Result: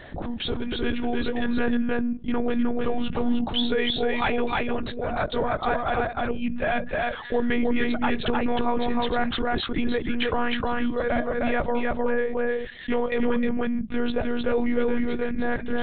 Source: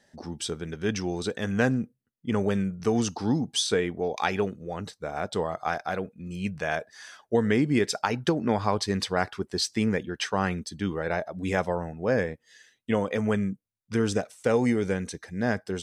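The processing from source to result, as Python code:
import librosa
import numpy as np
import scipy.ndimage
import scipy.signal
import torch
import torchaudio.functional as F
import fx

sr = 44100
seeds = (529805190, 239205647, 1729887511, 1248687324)

p1 = fx.level_steps(x, sr, step_db=15)
p2 = x + (p1 * librosa.db_to_amplitude(0.5))
p3 = fx.lpc_monotone(p2, sr, seeds[0], pitch_hz=240.0, order=10)
p4 = p3 + 10.0 ** (-3.0 / 20.0) * np.pad(p3, (int(309 * sr / 1000.0), 0))[:len(p3)]
p5 = fx.env_flatten(p4, sr, amount_pct=50)
y = p5 * librosa.db_to_amplitude(-5.0)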